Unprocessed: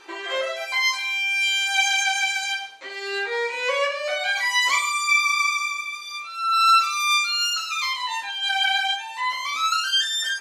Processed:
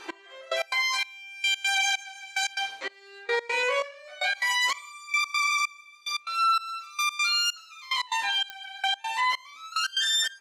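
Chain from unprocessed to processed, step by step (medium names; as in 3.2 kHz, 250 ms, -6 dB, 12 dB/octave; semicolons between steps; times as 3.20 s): trance gate "x....x.xx" 146 bpm -24 dB; 3.61–4.56 s: doubling 18 ms -3.5 dB; peak limiter -21.5 dBFS, peak gain reduction 12 dB; clicks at 8.50 s, -24 dBFS; trim +4 dB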